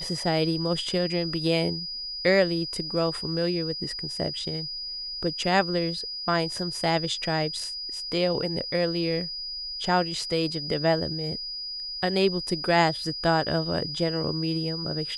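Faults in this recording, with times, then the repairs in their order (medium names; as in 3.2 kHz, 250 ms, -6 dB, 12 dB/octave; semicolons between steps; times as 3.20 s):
whine 4.9 kHz -32 dBFS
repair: band-stop 4.9 kHz, Q 30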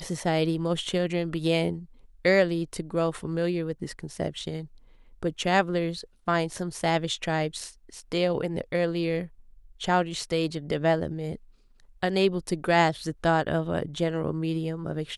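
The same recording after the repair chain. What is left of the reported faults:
nothing left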